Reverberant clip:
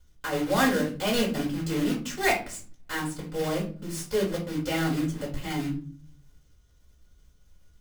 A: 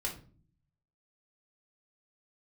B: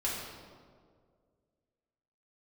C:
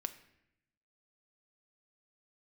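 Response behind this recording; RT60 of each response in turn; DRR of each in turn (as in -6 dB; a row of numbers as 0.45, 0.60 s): A; not exponential, 2.0 s, 0.80 s; -3.0, -6.5, 8.0 dB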